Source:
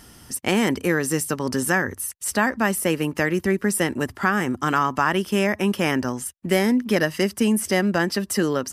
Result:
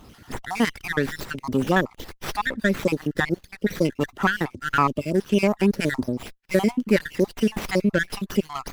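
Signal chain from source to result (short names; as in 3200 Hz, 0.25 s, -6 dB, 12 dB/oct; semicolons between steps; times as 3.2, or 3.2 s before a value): random spectral dropouts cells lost 61%; running maximum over 5 samples; gain +2.5 dB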